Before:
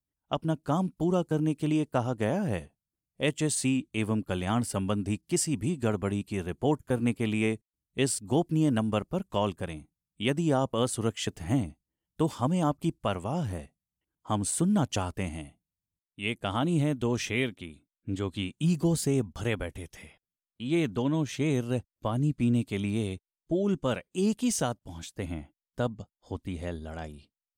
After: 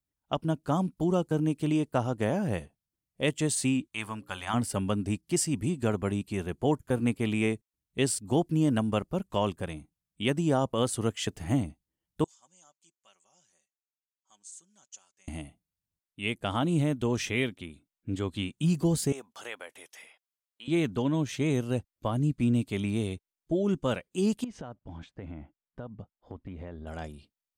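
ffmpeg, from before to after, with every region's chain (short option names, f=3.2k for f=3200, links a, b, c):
-filter_complex "[0:a]asettb=1/sr,asplit=3[a][b][c];[a]atrim=end=3.874[d];[b]atrim=start=3.87:end=4.54,asetpts=PTS-STARTPTS,afade=t=in:d=0.004:c=qsin,afade=t=out:st=0.666:d=0.004:c=qsin,lowshelf=f=670:t=q:w=1.5:g=-10.5,bandreject=f=60:t=h:w=6,bandreject=f=120:t=h:w=6,bandreject=f=180:t=h:w=6,bandreject=f=240:t=h:w=6,bandreject=f=300:t=h:w=6,bandreject=f=360:t=h:w=6,bandreject=f=420:t=h:w=6,bandreject=f=480:t=h:w=6,bandreject=f=540:t=h:w=6[e];[c]atrim=start=4.536[f];[d][e]acrossfade=d=0.004:c1=hsin:c2=qsin[g];[g][f]acrossfade=d=0.004:c1=qsin:c2=hsin,asettb=1/sr,asplit=3[h][i][j];[h]atrim=end=12.244[k];[i]atrim=start=12.24:end=15.28,asetpts=PTS-STARTPTS,afade=t=in:d=0.004:c=qsin,afade=t=out:st=3.036:d=0.004:c=qsin,bandpass=f=6.7k:t=q:w=6.5,aemphasis=mode=reproduction:type=cd,aecho=1:1:5.3:0.49,atrim=end_sample=134064[l];[j]atrim=start=15.276[m];[k][l]acrossfade=d=0.004:c1=hsin:c2=qsin[n];[n][m]acrossfade=d=0.004:c1=qsin:c2=hsin,asettb=1/sr,asplit=3[o][p][q];[o]atrim=end=19.124[r];[p]atrim=start=19.12:end=20.68,asetpts=PTS-STARTPTS,afade=t=in:d=0.004:c=qsin,afade=t=out:st=1.556:d=0.004:c=qsin,highpass=680,acompressor=threshold=-42dB:ratio=1.5:attack=3.2:release=140:knee=1:detection=peak[s];[q]atrim=start=20.676[t];[r][s]acrossfade=d=0.004:c1=hsin:c2=qsin[u];[u][t]acrossfade=d=0.004:c1=qsin:c2=hsin,asettb=1/sr,asplit=3[v][w][x];[v]atrim=end=24.444[y];[w]atrim=start=24.44:end=26.87,asetpts=PTS-STARTPTS,afade=t=in:d=0.004:c=qsin,afade=t=out:st=2.426:d=0.004:c=qsin,lowpass=2k,acompressor=threshold=-36dB:ratio=8:attack=3.2:release=140:knee=1:detection=peak[z];[x]atrim=start=26.866[aa];[y][z]acrossfade=d=0.004:c1=hsin:c2=qsin[ab];[ab][aa]acrossfade=d=0.004:c1=qsin:c2=hsin"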